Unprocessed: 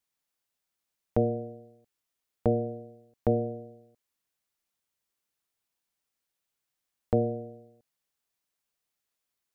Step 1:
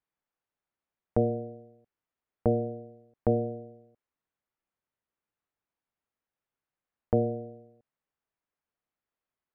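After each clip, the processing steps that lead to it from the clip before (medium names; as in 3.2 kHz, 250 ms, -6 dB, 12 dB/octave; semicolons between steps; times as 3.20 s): low-pass 1.8 kHz 12 dB/octave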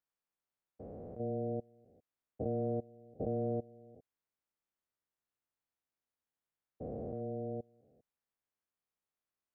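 spectrogram pixelated in time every 400 ms; trim -4 dB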